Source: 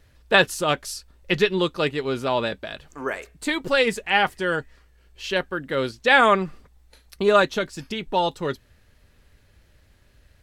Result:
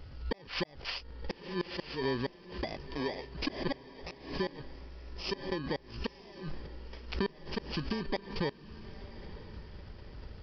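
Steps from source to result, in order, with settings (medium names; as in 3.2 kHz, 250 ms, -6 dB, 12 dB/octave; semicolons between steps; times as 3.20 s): bit-reversed sample order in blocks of 32 samples; inverted gate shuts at -13 dBFS, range -42 dB; in parallel at -2 dB: peak limiter -20.5 dBFS, peak gain reduction 11 dB; on the sum: compression 2.5:1, threshold -39 dBFS, peak gain reduction 14.5 dB; on a send: echo that smears into a reverb 951 ms, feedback 48%, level -15.5 dB; on the sum: resampled via 11.025 kHz; swell ahead of each attack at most 110 dB/s; trim +4 dB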